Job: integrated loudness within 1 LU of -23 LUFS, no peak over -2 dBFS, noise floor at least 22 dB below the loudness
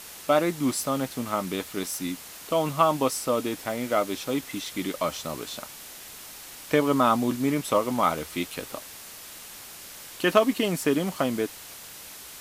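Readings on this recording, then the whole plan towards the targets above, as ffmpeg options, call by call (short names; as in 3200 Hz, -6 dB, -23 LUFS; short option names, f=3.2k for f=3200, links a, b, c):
noise floor -43 dBFS; noise floor target -49 dBFS; loudness -26.5 LUFS; peak -6.5 dBFS; loudness target -23.0 LUFS
-> -af "afftdn=nr=6:nf=-43"
-af "volume=3.5dB"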